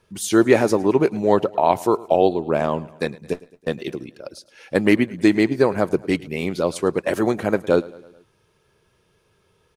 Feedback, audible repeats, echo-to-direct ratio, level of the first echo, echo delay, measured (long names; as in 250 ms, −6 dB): 56%, 3, −19.5 dB, −21.0 dB, 108 ms